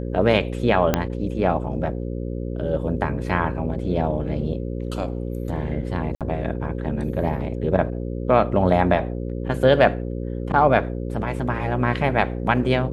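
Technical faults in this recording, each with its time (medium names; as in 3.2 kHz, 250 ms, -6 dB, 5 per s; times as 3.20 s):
buzz 60 Hz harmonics 9 -28 dBFS
0.94 s: pop -4 dBFS
6.15–6.21 s: dropout 57 ms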